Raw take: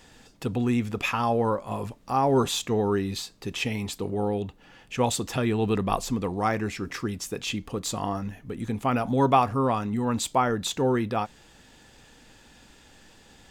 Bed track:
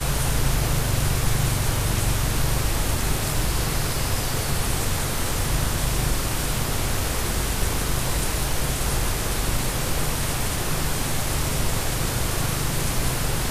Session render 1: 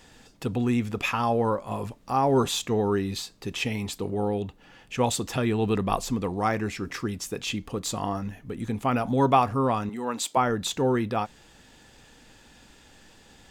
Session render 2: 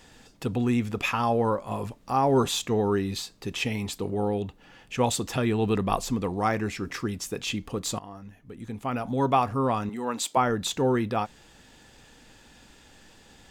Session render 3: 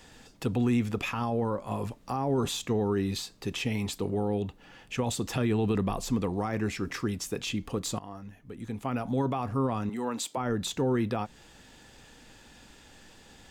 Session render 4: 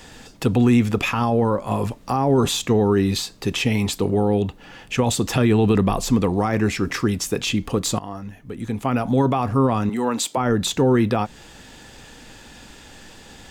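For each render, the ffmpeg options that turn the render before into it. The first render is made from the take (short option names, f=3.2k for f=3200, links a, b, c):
-filter_complex "[0:a]asettb=1/sr,asplit=3[a][b][c];[a]atrim=end=9.894[d];[b]atrim=start=9.89:end=10.37,asetpts=PTS-STARTPTS,afade=t=in:d=0.004:c=qsin,afade=t=out:st=0.476:d=0.004:c=qsin,highpass=340[e];[c]atrim=start=10.366[f];[d][e]acrossfade=d=0.004:c1=hsin:c2=qsin[g];[g][f]acrossfade=d=0.004:c1=qsin:c2=hsin"
-filter_complex "[0:a]asplit=2[a][b];[a]atrim=end=7.99,asetpts=PTS-STARTPTS,afade=t=out:st=7.986:d=0.004:c=hsin:silence=0.158489[c];[b]atrim=start=7.99,asetpts=PTS-STARTPTS,afade=t=in:d=1.92:silence=0.158489[d];[c][d]concat=n=2:v=0:a=1"
-filter_complex "[0:a]alimiter=limit=-18dB:level=0:latency=1:release=15,acrossover=split=380[a][b];[b]acompressor=threshold=-33dB:ratio=2.5[c];[a][c]amix=inputs=2:normalize=0"
-af "volume=10dB"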